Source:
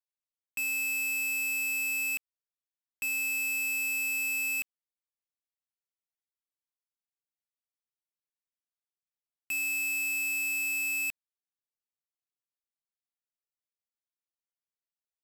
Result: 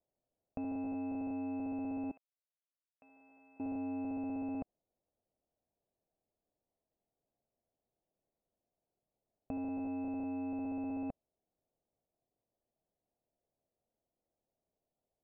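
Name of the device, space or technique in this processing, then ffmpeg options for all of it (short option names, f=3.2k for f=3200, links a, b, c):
under water: -filter_complex "[0:a]asettb=1/sr,asplit=3[a][b][c];[a]atrim=end=2.114[d];[b]atrim=start=2.11:end=3.6,asetpts=PTS-STARTPTS,afade=t=in:d=0.004:c=qsin,afade=t=out:st=1.486:d=0.004:c=qsin,aderivative[e];[c]atrim=start=3.596[f];[d][e]acrossfade=d=0.004:c1=hsin:c2=qsin[g];[g][f]acrossfade=d=0.004:c1=qsin:c2=hsin,lowpass=f=670:w=0.5412,lowpass=f=670:w=1.3066,equalizer=f=670:t=o:w=0.52:g=6.5,volume=17.5dB"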